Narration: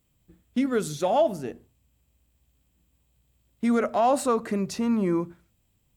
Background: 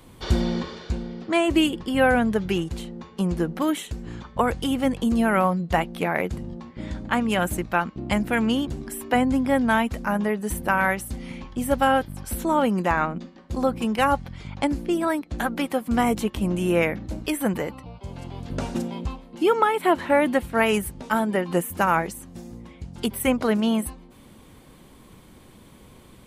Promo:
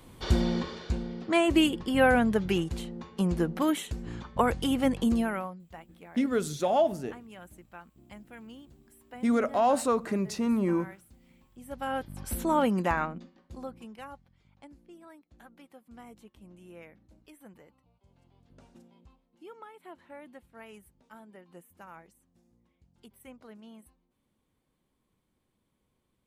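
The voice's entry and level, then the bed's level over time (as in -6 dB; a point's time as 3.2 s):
5.60 s, -2.5 dB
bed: 5.12 s -3 dB
5.66 s -25 dB
11.48 s -25 dB
12.23 s -4 dB
12.83 s -4 dB
14.3 s -28 dB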